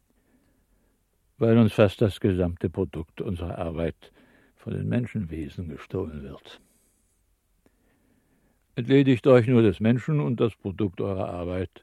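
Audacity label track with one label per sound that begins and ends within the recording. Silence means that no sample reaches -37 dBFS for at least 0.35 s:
1.410000	4.050000	sound
4.660000	6.540000	sound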